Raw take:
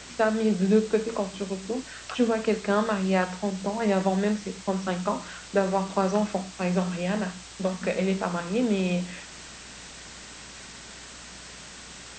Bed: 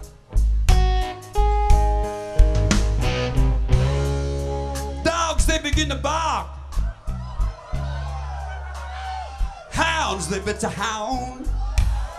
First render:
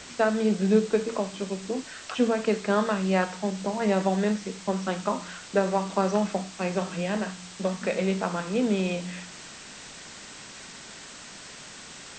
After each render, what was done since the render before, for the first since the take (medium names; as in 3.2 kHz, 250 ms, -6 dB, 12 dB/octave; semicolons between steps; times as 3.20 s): de-hum 60 Hz, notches 3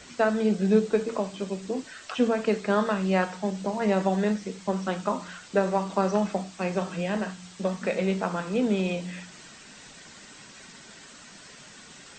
noise reduction 7 dB, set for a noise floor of -44 dBFS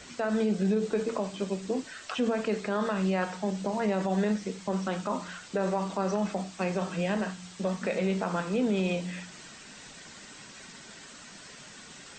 peak limiter -19 dBFS, peak gain reduction 10 dB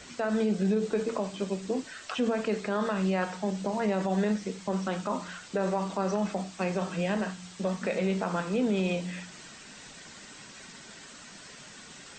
no audible change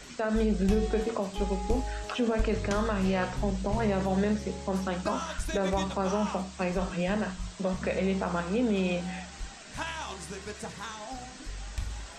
add bed -15.5 dB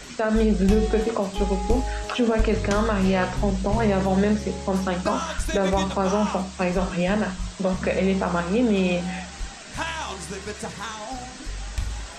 trim +6.5 dB